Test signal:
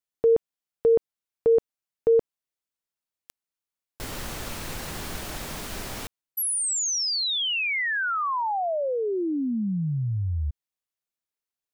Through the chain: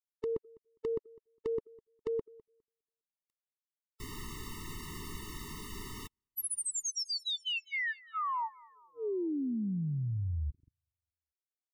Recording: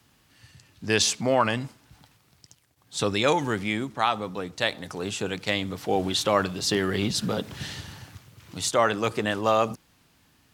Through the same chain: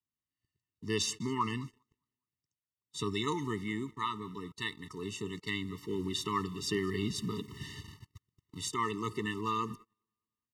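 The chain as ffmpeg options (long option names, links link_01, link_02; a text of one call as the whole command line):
ffmpeg -i in.wav -af "aecho=1:1:204|408|612|816:0.0708|0.0389|0.0214|0.0118,agate=range=-29dB:threshold=-47dB:ratio=16:release=22:detection=peak,afftfilt=real='re*eq(mod(floor(b*sr/1024/440),2),0)':imag='im*eq(mod(floor(b*sr/1024/440),2),0)':win_size=1024:overlap=0.75,volume=-7dB" out.wav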